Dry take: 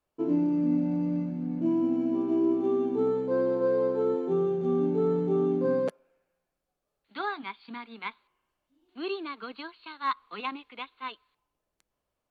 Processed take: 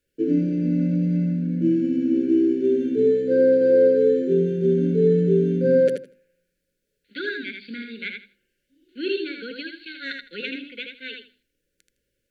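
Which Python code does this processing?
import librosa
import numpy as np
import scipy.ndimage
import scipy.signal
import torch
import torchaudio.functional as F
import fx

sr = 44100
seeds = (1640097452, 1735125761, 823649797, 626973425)

y = fx.brickwall_bandstop(x, sr, low_hz=580.0, high_hz=1400.0)
y = fx.hum_notches(y, sr, base_hz=50, count=7)
y = fx.echo_feedback(y, sr, ms=80, feedback_pct=19, wet_db=-5.0)
y = y * librosa.db_to_amplitude(7.0)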